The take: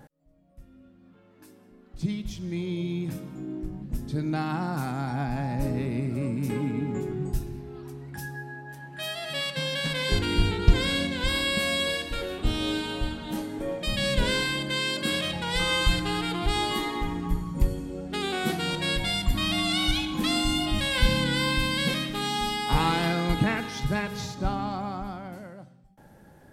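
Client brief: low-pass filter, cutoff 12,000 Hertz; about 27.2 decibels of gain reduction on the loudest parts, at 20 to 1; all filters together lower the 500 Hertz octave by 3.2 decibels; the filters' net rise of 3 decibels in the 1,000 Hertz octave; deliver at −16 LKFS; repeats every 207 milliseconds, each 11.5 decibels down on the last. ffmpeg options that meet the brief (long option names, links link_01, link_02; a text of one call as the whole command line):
ffmpeg -i in.wav -af "lowpass=12000,equalizer=frequency=500:width_type=o:gain=-5.5,equalizer=frequency=1000:width_type=o:gain=5.5,acompressor=threshold=-38dB:ratio=20,aecho=1:1:207|414|621:0.266|0.0718|0.0194,volume=26dB" out.wav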